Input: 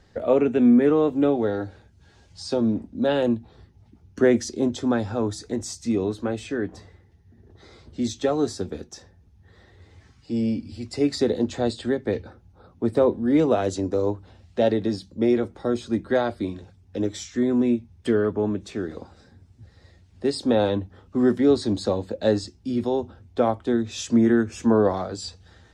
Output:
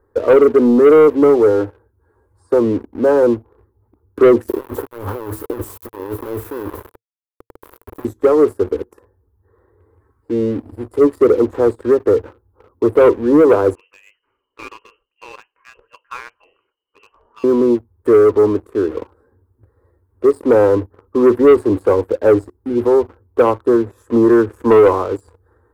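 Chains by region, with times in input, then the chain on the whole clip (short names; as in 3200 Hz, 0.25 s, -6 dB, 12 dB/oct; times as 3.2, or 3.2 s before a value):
4.48–8.05 negative-ratio compressor -34 dBFS + sample gate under -35.5 dBFS + Doppler distortion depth 0.3 ms
13.75–17.44 bell 1600 Hz -7 dB 0.85 oct + inverted band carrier 3000 Hz
whole clip: EQ curve 110 Hz 0 dB, 150 Hz -18 dB, 310 Hz +5 dB, 460 Hz +11 dB, 710 Hz -6 dB, 1000 Hz +10 dB, 1600 Hz -1 dB, 2800 Hz -29 dB, 6100 Hz -27 dB, 12000 Hz +9 dB; sample leveller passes 2; gain -1.5 dB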